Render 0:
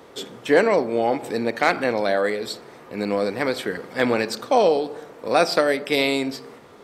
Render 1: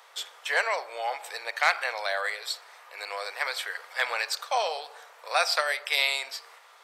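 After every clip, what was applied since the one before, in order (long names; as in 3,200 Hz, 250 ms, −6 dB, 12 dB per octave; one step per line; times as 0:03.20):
Bessel high-pass filter 1,100 Hz, order 6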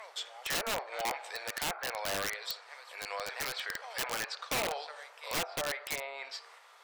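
backwards echo 693 ms −18 dB
treble cut that deepens with the level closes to 980 Hz, closed at −21 dBFS
wrap-around overflow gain 23 dB
level −3.5 dB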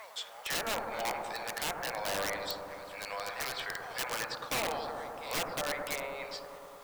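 in parallel at −11 dB: bit-depth reduction 8 bits, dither triangular
on the sum: bucket-brigade delay 104 ms, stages 1,024, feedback 82%, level −5 dB
level −3 dB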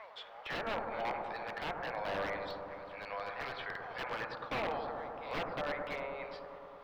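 high-frequency loss of the air 350 metres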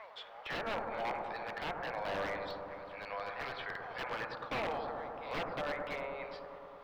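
gain into a clipping stage and back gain 30.5 dB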